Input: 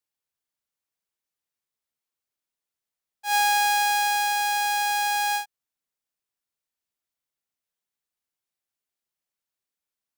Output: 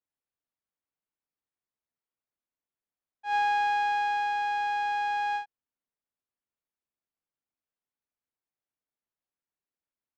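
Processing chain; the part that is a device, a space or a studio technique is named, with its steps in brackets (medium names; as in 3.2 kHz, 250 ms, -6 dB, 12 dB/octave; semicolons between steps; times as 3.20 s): phone in a pocket (low-pass 3 kHz 12 dB/octave; peaking EQ 270 Hz +3.5 dB 0.34 oct; treble shelf 2.2 kHz -9 dB); trim -2 dB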